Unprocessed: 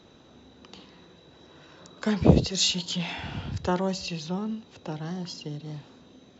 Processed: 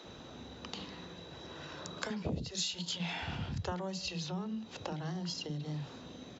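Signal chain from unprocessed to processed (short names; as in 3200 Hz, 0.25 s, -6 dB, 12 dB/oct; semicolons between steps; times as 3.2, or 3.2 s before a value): compressor 5:1, threshold -41 dBFS, peak gain reduction 26 dB; bands offset in time highs, lows 40 ms, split 300 Hz; gain +5.5 dB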